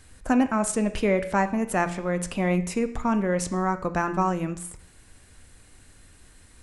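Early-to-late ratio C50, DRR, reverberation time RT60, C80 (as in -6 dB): 13.5 dB, 9.0 dB, 0.65 s, 16.5 dB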